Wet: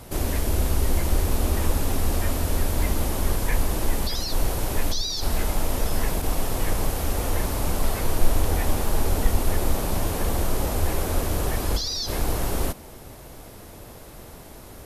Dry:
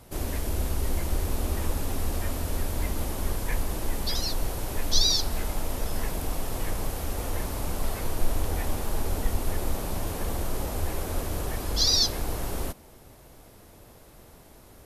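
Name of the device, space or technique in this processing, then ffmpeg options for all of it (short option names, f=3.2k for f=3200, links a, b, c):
de-esser from a sidechain: -filter_complex "[0:a]asplit=2[a][b];[b]highpass=f=6.2k:p=1,apad=whole_len=655081[c];[a][c]sidechaincompress=threshold=-41dB:ratio=4:attack=1.2:release=40,volume=8.5dB"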